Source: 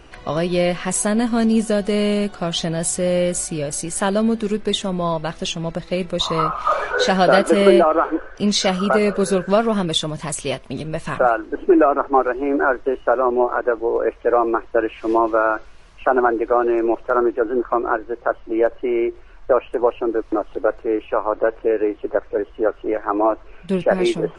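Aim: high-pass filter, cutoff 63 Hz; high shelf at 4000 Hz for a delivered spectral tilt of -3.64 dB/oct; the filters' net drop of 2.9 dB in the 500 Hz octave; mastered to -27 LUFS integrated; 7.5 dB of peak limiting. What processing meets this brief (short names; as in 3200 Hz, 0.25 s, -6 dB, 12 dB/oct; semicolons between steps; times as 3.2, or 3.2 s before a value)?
HPF 63 Hz; bell 500 Hz -4 dB; high shelf 4000 Hz +8.5 dB; gain -5.5 dB; limiter -14 dBFS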